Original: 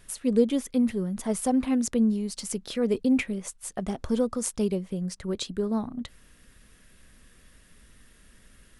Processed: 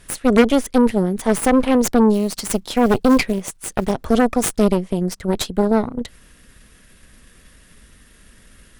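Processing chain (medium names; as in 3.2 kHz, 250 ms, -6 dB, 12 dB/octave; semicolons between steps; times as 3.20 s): 2.14–3.92 s: short-mantissa float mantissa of 4-bit; Chebyshev shaper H 8 -13 dB, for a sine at -10 dBFS; trim +7.5 dB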